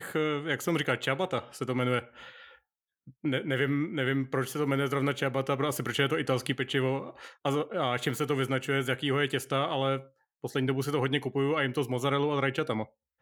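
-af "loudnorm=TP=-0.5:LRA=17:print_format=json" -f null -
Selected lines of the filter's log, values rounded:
"input_i" : "-29.7",
"input_tp" : "-12.0",
"input_lra" : "1.9",
"input_thresh" : "-40.1",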